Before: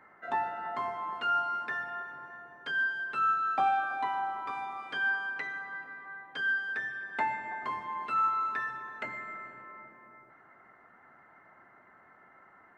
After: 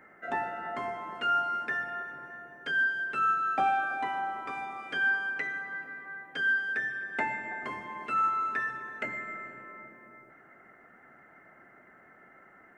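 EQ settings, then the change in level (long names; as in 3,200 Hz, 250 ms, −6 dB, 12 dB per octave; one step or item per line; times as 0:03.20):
graphic EQ with 15 bands 100 Hz −6 dB, 1,000 Hz −12 dB, 4,000 Hz −9 dB
+6.0 dB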